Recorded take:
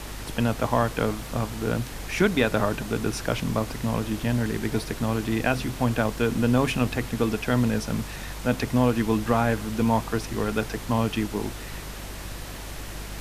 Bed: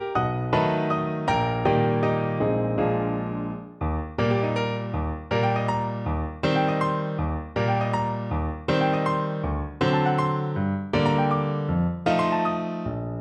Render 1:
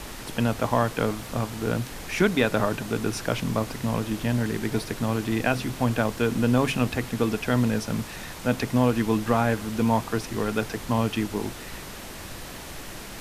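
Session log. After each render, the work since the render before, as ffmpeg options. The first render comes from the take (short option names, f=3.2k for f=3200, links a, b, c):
-af "bandreject=f=50:t=h:w=4,bandreject=f=100:t=h:w=4,bandreject=f=150:t=h:w=4"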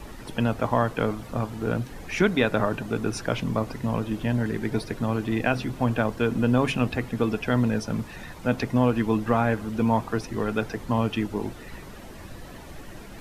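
-af "afftdn=nr=11:nf=-39"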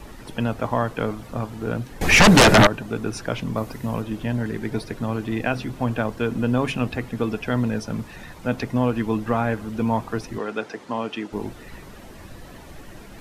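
-filter_complex "[0:a]asettb=1/sr,asplit=3[a][b][c];[a]atrim=end=2.014[d];[b]atrim=start=2.01:end=2.67,asetpts=PTS-STARTPTS,afade=t=in:d=0.004:c=qsin,afade=t=out:st=0.656:d=0.004:c=qsin,aeval=exprs='0.422*sin(PI/2*5.62*val(0)/0.422)':c=same[e];[c]atrim=start=2.666[f];[d][e]acrossfade=d=0.004:c1=hsin:c2=qsin[g];[g][f]acrossfade=d=0.004:c1=qsin:c2=hsin,asettb=1/sr,asplit=3[h][i][j];[h]atrim=end=3.564[k];[i]atrim=start=3.56:end=4.02,asetpts=PTS-STARTPTS,afade=t=in:d=0.004:c=qsin,afade=t=out:st=0.456:d=0.004:c=qsin,highshelf=f=11k:g=12[l];[j]atrim=start=4.016[m];[k][l]acrossfade=d=0.004:c1=hsin:c2=qsin[n];[n][m]acrossfade=d=0.004:c1=qsin:c2=hsin,asettb=1/sr,asplit=3[o][p][q];[o]atrim=end=10.384[r];[p]atrim=start=10.38:end=11.33,asetpts=PTS-STARTPTS,afade=t=in:d=0.004:c=qsin,afade=t=out:st=0.946:d=0.004:c=qsin,highpass=280,lowpass=7.7k[s];[q]atrim=start=11.326[t];[r][s]acrossfade=d=0.004:c1=hsin:c2=qsin[u];[u][t]acrossfade=d=0.004:c1=qsin:c2=hsin"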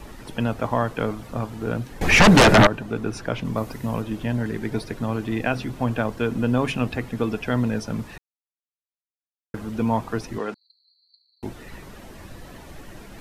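-filter_complex "[0:a]asettb=1/sr,asplit=3[a][b][c];[a]atrim=end=2.004[d];[b]atrim=start=2:end=3.45,asetpts=PTS-STARTPTS,afade=t=in:d=0.004:c=qsin,afade=t=out:st=1.446:d=0.004:c=qsin,highshelf=f=4.5k:g=-6[e];[c]atrim=start=3.446[f];[d][e]acrossfade=d=0.004:c1=hsin:c2=qsin[g];[g][f]acrossfade=d=0.004:c1=qsin:c2=hsin,asettb=1/sr,asplit=3[h][i][j];[h]atrim=end=10.544[k];[i]atrim=start=10.54:end=11.43,asetpts=PTS-STARTPTS,afade=t=in:d=0.004:c=qsin,afade=t=out:st=0.886:d=0.004:c=qsin,asuperpass=centerf=4300:order=20:qfactor=6.9[l];[j]atrim=start=11.426[m];[k][l]acrossfade=d=0.004:c1=hsin:c2=qsin[n];[n][m]acrossfade=d=0.004:c1=qsin:c2=hsin,asplit=3[o][p][q];[o]atrim=end=8.18,asetpts=PTS-STARTPTS,afade=t=out:st=8.176:d=0.004:c=hsin[r];[p]atrim=start=8.18:end=9.54,asetpts=PTS-STARTPTS,volume=0[s];[q]atrim=start=9.54,asetpts=PTS-STARTPTS,afade=t=in:d=0.004:c=hsin[t];[r][s][t]concat=n=3:v=0:a=1"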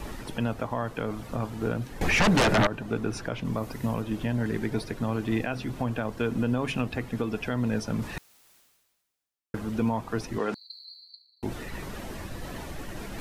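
-af "alimiter=limit=-16.5dB:level=0:latency=1:release=306,areverse,acompressor=mode=upward:threshold=-30dB:ratio=2.5,areverse"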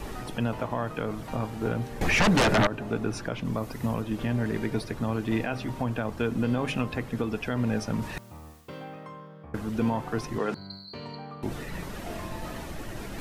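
-filter_complex "[1:a]volume=-19dB[a];[0:a][a]amix=inputs=2:normalize=0"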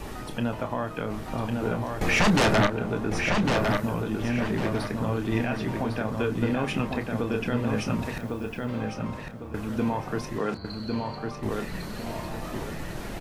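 -filter_complex "[0:a]asplit=2[a][b];[b]adelay=29,volume=-9.5dB[c];[a][c]amix=inputs=2:normalize=0,asplit=2[d][e];[e]adelay=1103,lowpass=f=4.4k:p=1,volume=-3.5dB,asplit=2[f][g];[g]adelay=1103,lowpass=f=4.4k:p=1,volume=0.37,asplit=2[h][i];[i]adelay=1103,lowpass=f=4.4k:p=1,volume=0.37,asplit=2[j][k];[k]adelay=1103,lowpass=f=4.4k:p=1,volume=0.37,asplit=2[l][m];[m]adelay=1103,lowpass=f=4.4k:p=1,volume=0.37[n];[d][f][h][j][l][n]amix=inputs=6:normalize=0"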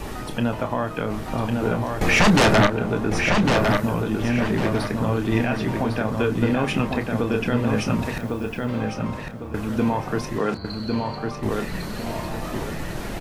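-af "volume=5dB"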